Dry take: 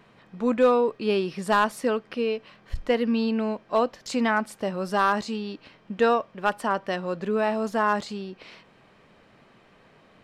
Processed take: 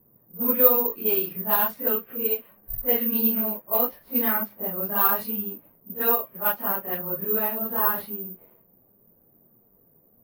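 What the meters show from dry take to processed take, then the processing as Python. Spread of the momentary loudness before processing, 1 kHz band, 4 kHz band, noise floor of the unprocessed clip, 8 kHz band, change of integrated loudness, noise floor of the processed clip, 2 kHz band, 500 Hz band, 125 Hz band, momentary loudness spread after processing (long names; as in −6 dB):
13 LU, −4.5 dB, −6.5 dB, −57 dBFS, −3.0 dB, +3.0 dB, −61 dBFS, −5.5 dB, −4.5 dB, −4.5 dB, 9 LU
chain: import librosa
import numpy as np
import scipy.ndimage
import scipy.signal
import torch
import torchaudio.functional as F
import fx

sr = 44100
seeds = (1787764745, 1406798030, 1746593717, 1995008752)

y = fx.phase_scramble(x, sr, seeds[0], window_ms=100)
y = fx.env_lowpass(y, sr, base_hz=470.0, full_db=-17.5)
y = (np.kron(scipy.signal.resample_poly(y, 1, 3), np.eye(3)[0]) * 3)[:len(y)]
y = F.gain(torch.from_numpy(y), -5.0).numpy()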